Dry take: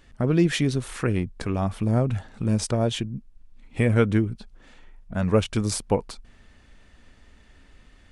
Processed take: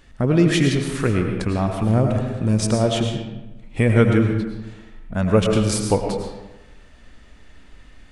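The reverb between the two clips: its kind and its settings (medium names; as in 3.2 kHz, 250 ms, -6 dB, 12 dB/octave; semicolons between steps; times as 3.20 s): algorithmic reverb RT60 1.1 s, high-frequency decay 0.65×, pre-delay 65 ms, DRR 3 dB; trim +3.5 dB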